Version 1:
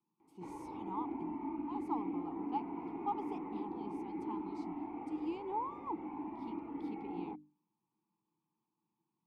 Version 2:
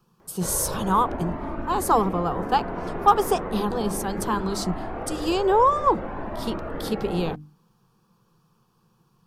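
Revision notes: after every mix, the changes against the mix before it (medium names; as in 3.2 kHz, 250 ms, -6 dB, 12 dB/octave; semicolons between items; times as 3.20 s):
speech +8.0 dB; master: remove vowel filter u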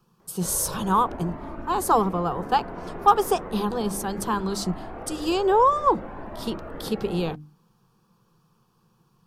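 background -5.0 dB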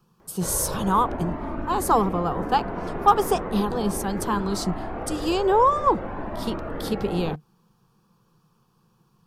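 background +5.0 dB; master: remove hum notches 50/100/150/200/250/300 Hz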